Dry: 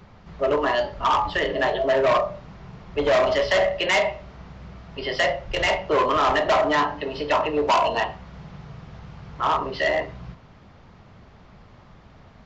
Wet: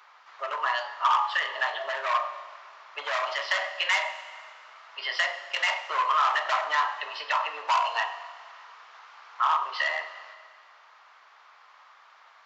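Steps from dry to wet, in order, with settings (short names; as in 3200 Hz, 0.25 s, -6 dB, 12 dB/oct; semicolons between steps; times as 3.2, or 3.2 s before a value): compressor 3:1, threshold -23 dBFS, peak gain reduction 5.5 dB; ladder high-pass 890 Hz, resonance 35%; Schroeder reverb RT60 1.9 s, combs from 33 ms, DRR 11.5 dB; gain +7 dB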